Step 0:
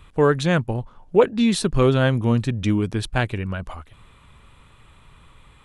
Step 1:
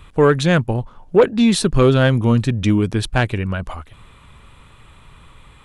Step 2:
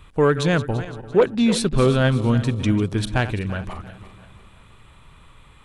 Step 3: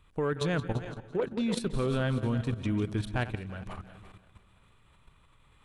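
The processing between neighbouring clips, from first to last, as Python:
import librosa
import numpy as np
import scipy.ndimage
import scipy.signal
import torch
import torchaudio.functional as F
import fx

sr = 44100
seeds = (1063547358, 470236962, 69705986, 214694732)

y1 = 10.0 ** (-7.5 / 20.0) * np.tanh(x / 10.0 ** (-7.5 / 20.0))
y1 = F.gain(torch.from_numpy(y1), 5.0).numpy()
y2 = fx.reverse_delay_fb(y1, sr, ms=170, feedback_pct=62, wet_db=-13)
y2 = F.gain(torch.from_numpy(y2), -4.0).numpy()
y3 = fx.dynamic_eq(y2, sr, hz=6200.0, q=1.0, threshold_db=-43.0, ratio=4.0, max_db=-4)
y3 = fx.echo_feedback(y3, sr, ms=180, feedback_pct=47, wet_db=-15.5)
y3 = fx.level_steps(y3, sr, step_db=11)
y3 = F.gain(torch.from_numpy(y3), -6.0).numpy()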